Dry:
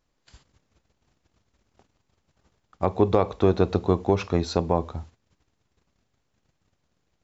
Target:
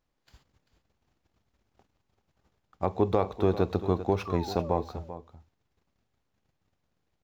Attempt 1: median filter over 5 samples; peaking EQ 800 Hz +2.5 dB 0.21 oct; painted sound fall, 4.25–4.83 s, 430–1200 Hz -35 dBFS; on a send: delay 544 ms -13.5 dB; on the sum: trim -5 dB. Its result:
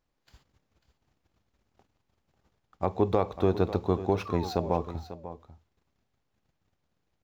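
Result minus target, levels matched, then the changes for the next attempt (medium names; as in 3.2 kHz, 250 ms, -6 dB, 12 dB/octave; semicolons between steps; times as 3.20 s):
echo 153 ms late
change: delay 391 ms -13.5 dB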